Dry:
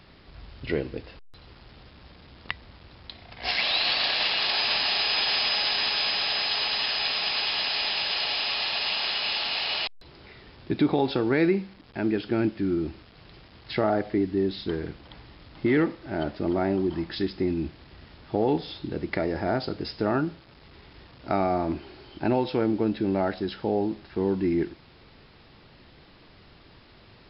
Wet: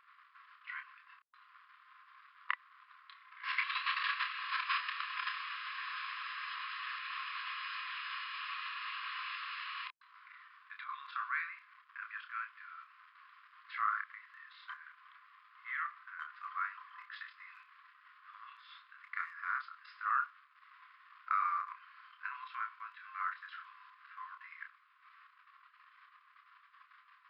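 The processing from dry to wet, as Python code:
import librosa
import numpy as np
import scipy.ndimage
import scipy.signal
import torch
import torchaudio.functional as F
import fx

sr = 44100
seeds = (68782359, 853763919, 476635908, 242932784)

y = scipy.signal.sosfilt(scipy.signal.butter(2, 1500.0, 'lowpass', fs=sr, output='sos'), x)
y = fx.tilt_eq(y, sr, slope=-3.0)
y = fx.level_steps(y, sr, step_db=11)
y = fx.brickwall_highpass(y, sr, low_hz=1000.0)
y = fx.doubler(y, sr, ms=29.0, db=-6.0)
y = y * 10.0 ** (6.5 / 20.0)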